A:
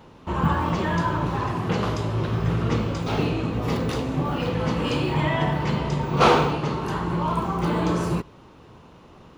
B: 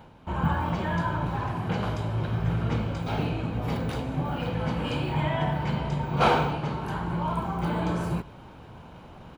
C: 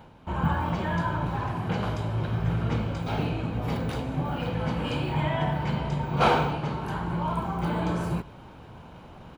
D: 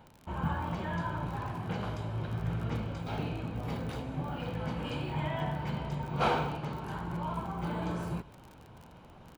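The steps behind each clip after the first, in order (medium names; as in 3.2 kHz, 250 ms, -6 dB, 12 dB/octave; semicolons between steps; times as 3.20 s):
reverse; upward compressor, threshold -33 dBFS; reverse; peaking EQ 5.8 kHz -6.5 dB 0.92 oct; comb 1.3 ms, depth 36%; trim -4.5 dB
no audible change
crackle 39 per s -34 dBFS; trim -7 dB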